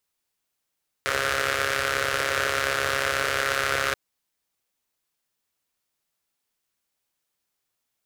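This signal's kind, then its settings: four-cylinder engine model, steady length 2.88 s, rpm 4100, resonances 88/520/1400 Hz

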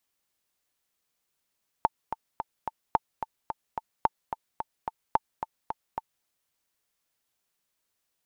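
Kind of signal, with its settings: metronome 218 bpm, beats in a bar 4, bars 4, 890 Hz, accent 10 dB -7.5 dBFS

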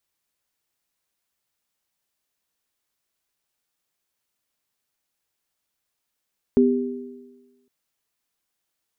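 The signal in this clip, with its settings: sine partials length 1.11 s, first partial 249 Hz, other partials 397 Hz, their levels -2 dB, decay 1.23 s, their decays 1.27 s, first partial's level -13 dB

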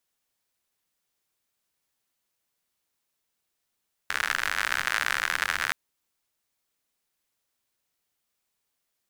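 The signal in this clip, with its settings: rain from filtered ticks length 1.62 s, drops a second 84, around 1.6 kHz, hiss -20 dB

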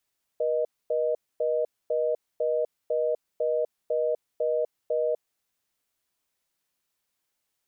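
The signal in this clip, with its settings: call progress tone reorder tone, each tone -25.5 dBFS 4.99 s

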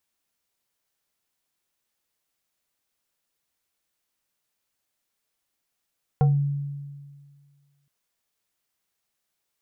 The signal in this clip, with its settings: FM tone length 1.67 s, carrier 142 Hz, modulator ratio 4.31, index 0.64, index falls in 0.26 s exponential, decay 1.83 s, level -14 dB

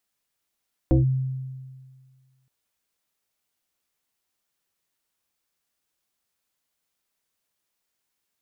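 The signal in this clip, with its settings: FM tone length 1.57 s, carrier 131 Hz, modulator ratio 1.5, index 1.7, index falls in 0.14 s linear, decay 1.77 s, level -13 dB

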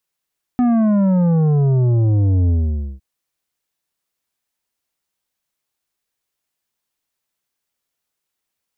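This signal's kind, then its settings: sub drop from 250 Hz, over 2.41 s, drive 9 dB, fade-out 0.51 s, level -13 dB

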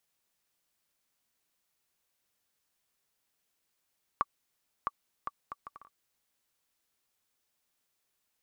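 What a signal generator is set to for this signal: bouncing ball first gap 0.66 s, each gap 0.61, 1.15 kHz, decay 35 ms -14.5 dBFS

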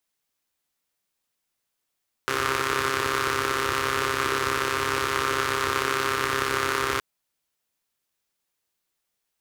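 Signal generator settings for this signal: four-cylinder engine model, steady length 4.72 s, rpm 4000, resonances 95/390/1200 Hz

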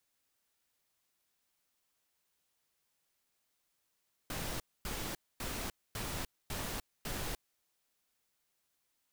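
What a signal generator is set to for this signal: noise bursts pink, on 0.30 s, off 0.25 s, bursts 6, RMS -39 dBFS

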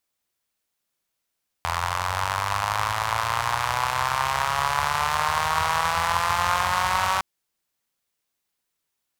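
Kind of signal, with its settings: four-cylinder engine model, changing speed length 5.56 s, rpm 2500, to 5700, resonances 86/1000 Hz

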